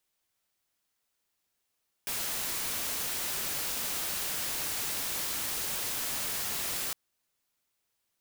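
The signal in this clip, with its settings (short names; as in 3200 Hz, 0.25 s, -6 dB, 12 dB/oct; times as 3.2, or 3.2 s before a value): noise white, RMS -33.5 dBFS 4.86 s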